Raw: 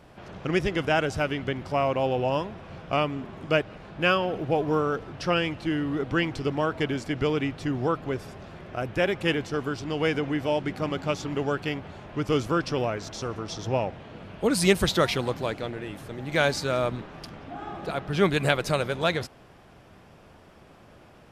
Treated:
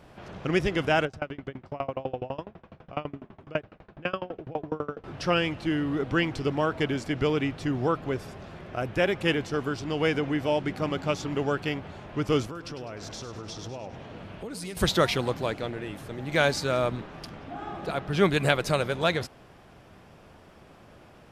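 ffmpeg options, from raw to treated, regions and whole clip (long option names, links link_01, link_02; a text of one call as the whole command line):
ffmpeg -i in.wav -filter_complex "[0:a]asettb=1/sr,asplit=3[link_01][link_02][link_03];[link_01]atrim=end=1.054[link_04];[link_02]atrim=start=1.05:end=5.04,asetpts=PTS-STARTPTS,afade=type=in:duration=0.004:curve=qsin,afade=type=out:start_time=3.986:duration=0.004:curve=qsin,aemphasis=mode=reproduction:type=75kf,aeval=exprs='val(0)*pow(10,-28*if(lt(mod(12*n/s,1),2*abs(12)/1000),1-mod(12*n/s,1)/(2*abs(12)/1000),(mod(12*n/s,1)-2*abs(12)/1000)/(1-2*abs(12)/1000))/20)':channel_layout=same[link_05];[link_03]atrim=start=5.036[link_06];[link_04][link_05]acrossfade=duration=0.004:curve1=hsin:curve2=qsin[link_07];[link_07][link_06]acrossfade=duration=0.004:curve1=qsin:curve2=hsin,asettb=1/sr,asplit=3[link_08][link_09][link_10];[link_08]atrim=end=12.454[link_11];[link_09]atrim=start=12.45:end=14.77,asetpts=PTS-STARTPTS,afade=type=in:duration=0.004:curve=qsin,afade=type=out:start_time=2.316:duration=0.004:curve=qsin,acompressor=threshold=-35dB:ratio=6:attack=3.2:release=140:knee=1:detection=peak,aecho=1:1:101|202|303|404|505|606:0.282|0.147|0.0762|0.0396|0.0206|0.0107,atrim=end_sample=102312[link_12];[link_10]atrim=start=14.766[link_13];[link_11][link_12]acrossfade=duration=0.004:curve1=hsin:curve2=qsin[link_14];[link_14][link_13]acrossfade=duration=0.004:curve1=qsin:curve2=hsin" out.wav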